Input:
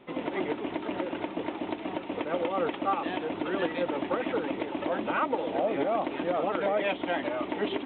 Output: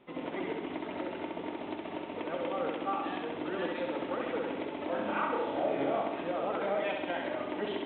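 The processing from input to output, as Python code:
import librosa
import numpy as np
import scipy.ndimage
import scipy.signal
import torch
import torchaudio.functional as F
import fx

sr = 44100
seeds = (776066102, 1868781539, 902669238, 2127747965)

y = fx.doubler(x, sr, ms=29.0, db=-3.0, at=(4.9, 6.01))
y = fx.room_flutter(y, sr, wall_m=11.3, rt60_s=1.0)
y = F.gain(torch.from_numpy(y), -6.5).numpy()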